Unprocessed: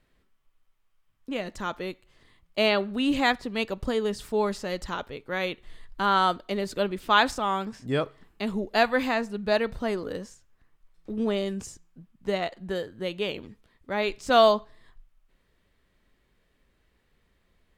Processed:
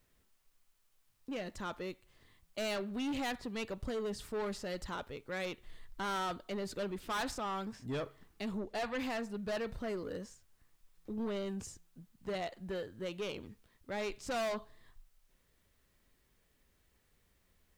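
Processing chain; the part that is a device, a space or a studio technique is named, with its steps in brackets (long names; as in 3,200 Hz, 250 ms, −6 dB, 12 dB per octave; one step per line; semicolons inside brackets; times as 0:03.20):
open-reel tape (soft clipping −27 dBFS, distortion −5 dB; parametric band 90 Hz +4 dB; white noise bed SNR 38 dB)
0:08.58–0:08.99: high-shelf EQ 8,900 Hz −9.5 dB
level −6 dB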